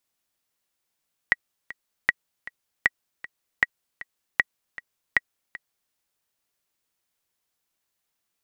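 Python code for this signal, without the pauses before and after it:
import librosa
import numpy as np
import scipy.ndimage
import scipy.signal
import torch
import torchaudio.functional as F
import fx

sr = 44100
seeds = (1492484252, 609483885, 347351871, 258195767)

y = fx.click_track(sr, bpm=156, beats=2, bars=6, hz=1920.0, accent_db=18.0, level_db=-4.5)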